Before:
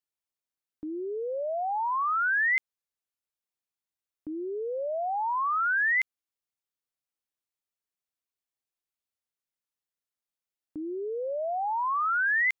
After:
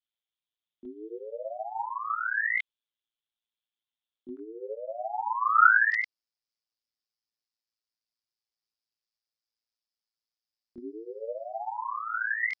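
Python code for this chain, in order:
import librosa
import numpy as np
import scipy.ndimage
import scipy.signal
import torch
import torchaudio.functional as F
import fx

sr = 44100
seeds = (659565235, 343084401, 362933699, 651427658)

y = fx.lowpass_res(x, sr, hz=fx.steps((0.0, 3400.0), (4.37, 1400.0), (5.92, 5000.0)), q=7.2)
y = fx.chorus_voices(y, sr, voices=4, hz=0.21, base_ms=23, depth_ms=3.8, mix_pct=55)
y = y * np.sin(2.0 * np.pi * 56.0 * np.arange(len(y)) / sr)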